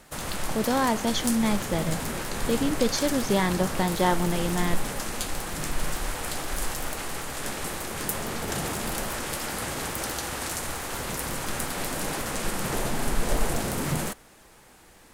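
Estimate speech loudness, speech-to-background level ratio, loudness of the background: -26.5 LUFS, 4.0 dB, -30.5 LUFS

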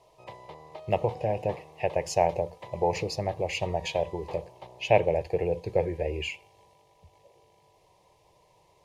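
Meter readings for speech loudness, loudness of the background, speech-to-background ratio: -29.0 LUFS, -47.5 LUFS, 18.5 dB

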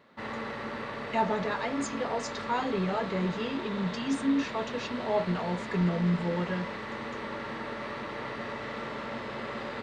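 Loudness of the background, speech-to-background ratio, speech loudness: -37.0 LUFS, 5.5 dB, -31.5 LUFS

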